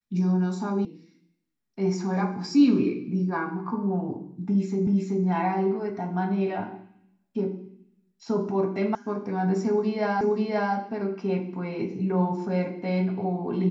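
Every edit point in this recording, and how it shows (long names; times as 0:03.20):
0:00.85: cut off before it has died away
0:04.87: the same again, the last 0.38 s
0:08.95: cut off before it has died away
0:10.21: the same again, the last 0.53 s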